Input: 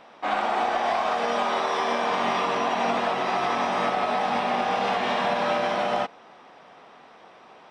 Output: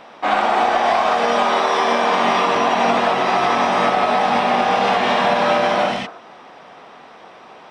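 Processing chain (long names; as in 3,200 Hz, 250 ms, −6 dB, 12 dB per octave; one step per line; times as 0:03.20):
0:01.57–0:02.56: high-pass filter 140 Hz 24 dB per octave
0:05.87–0:06.19: healed spectral selection 260–1,800 Hz both
level +8 dB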